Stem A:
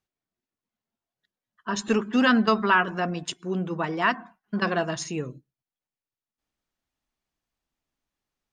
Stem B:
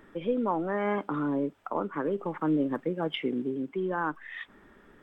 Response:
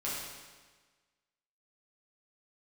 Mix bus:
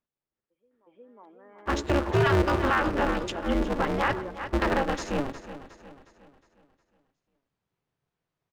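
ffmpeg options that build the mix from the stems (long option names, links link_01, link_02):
-filter_complex "[0:a]aeval=exprs='val(0)*sgn(sin(2*PI*140*n/s))':channel_layout=same,volume=-3dB,asplit=3[link_01][link_02][link_03];[link_02]volume=-14.5dB[link_04];[1:a]highpass=290,adelay=350,volume=-10dB,asplit=2[link_05][link_06];[link_06]volume=-17.5dB[link_07];[link_03]apad=whole_len=236936[link_08];[link_05][link_08]sidechaingate=range=-33dB:threshold=-44dB:ratio=16:detection=peak[link_09];[link_04][link_07]amix=inputs=2:normalize=0,aecho=0:1:361|722|1083|1444|1805|2166:1|0.44|0.194|0.0852|0.0375|0.0165[link_10];[link_01][link_09][link_10]amix=inputs=3:normalize=0,aemphasis=mode=reproduction:type=75kf,dynaudnorm=framelen=110:gausssize=13:maxgain=5.5dB,alimiter=limit=-14.5dB:level=0:latency=1:release=24"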